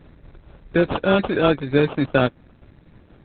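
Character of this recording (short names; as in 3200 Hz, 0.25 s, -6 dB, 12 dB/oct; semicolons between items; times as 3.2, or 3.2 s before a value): aliases and images of a low sample rate 2000 Hz, jitter 0%; tremolo saw down 4.2 Hz, depth 35%; Opus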